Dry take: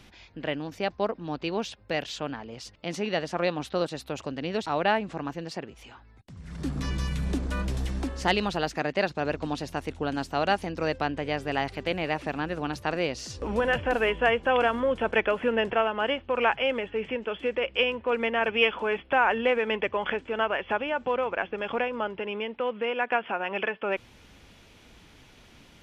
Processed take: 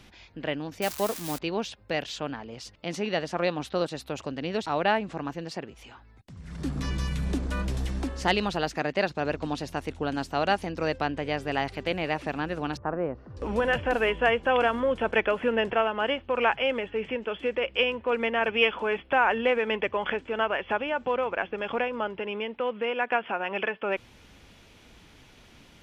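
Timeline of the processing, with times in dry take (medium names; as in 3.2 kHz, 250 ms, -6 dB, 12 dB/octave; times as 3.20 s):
0.82–1.39 s: zero-crossing glitches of -21.5 dBFS
12.77–13.37 s: Chebyshev low-pass 1.3 kHz, order 3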